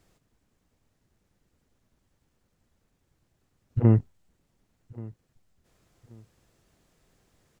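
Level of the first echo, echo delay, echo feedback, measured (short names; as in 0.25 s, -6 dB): -21.0 dB, 1.131 s, 28%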